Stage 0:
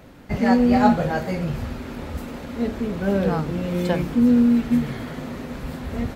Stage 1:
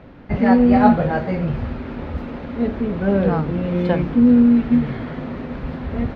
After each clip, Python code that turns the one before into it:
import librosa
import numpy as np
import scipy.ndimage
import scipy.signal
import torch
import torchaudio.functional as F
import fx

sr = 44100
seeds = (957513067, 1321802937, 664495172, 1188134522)

y = fx.air_absorb(x, sr, metres=300.0)
y = y * 10.0 ** (4.0 / 20.0)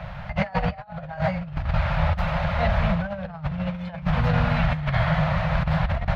y = scipy.signal.sosfilt(scipy.signal.ellip(3, 1.0, 40, [170.0, 610.0], 'bandstop', fs=sr, output='sos'), x)
y = fx.over_compress(y, sr, threshold_db=-30.0, ratio=-0.5)
y = y * 10.0 ** (6.5 / 20.0)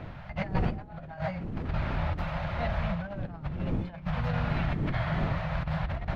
y = fx.dmg_wind(x, sr, seeds[0], corner_hz=180.0, level_db=-28.0)
y = y * 10.0 ** (-8.5 / 20.0)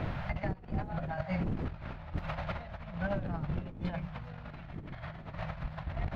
y = fx.over_compress(x, sr, threshold_db=-36.0, ratio=-0.5)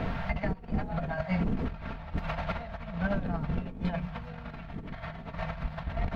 y = x + 0.47 * np.pad(x, (int(4.4 * sr / 1000.0), 0))[:len(x)]
y = y * 10.0 ** (3.5 / 20.0)